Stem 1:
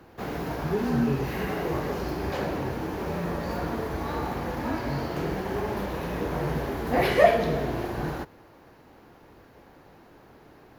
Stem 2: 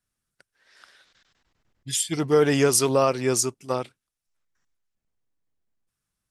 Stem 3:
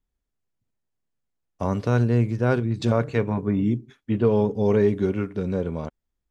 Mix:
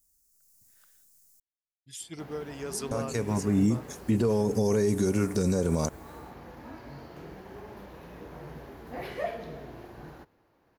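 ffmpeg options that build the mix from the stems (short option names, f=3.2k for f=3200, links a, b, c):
-filter_complex "[0:a]adelay=2000,volume=-15dB[a];[1:a]agate=range=-33dB:threshold=-53dB:ratio=3:detection=peak,tremolo=f=1.4:d=0.56,volume=-14dB,asplit=2[b][c];[2:a]alimiter=limit=-16.5dB:level=0:latency=1:release=295,dynaudnorm=f=280:g=3:m=8.5dB,aexciter=amount=15.9:drive=5.9:freq=5k,volume=-1.5dB,asplit=3[d][e][f];[d]atrim=end=1.4,asetpts=PTS-STARTPTS,afade=t=out:st=1.396:d=0.004:c=hsin[g];[e]atrim=start=1.4:end=2.91,asetpts=PTS-STARTPTS,volume=0[h];[f]atrim=start=2.91,asetpts=PTS-STARTPTS,afade=t=in:d=0.004:c=hsin[i];[g][h][i]concat=n=3:v=0:a=1[j];[c]apad=whole_len=278168[k];[j][k]sidechaincompress=threshold=-42dB:ratio=8:attack=43:release=649[l];[a][b][l]amix=inputs=3:normalize=0,alimiter=limit=-16dB:level=0:latency=1:release=65"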